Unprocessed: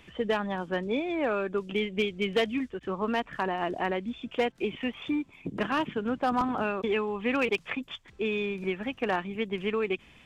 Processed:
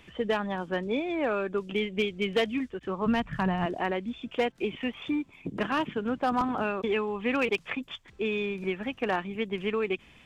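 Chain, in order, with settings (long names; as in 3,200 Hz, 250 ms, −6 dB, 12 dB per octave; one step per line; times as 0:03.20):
0:03.06–0:03.66: low shelf with overshoot 230 Hz +12.5 dB, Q 1.5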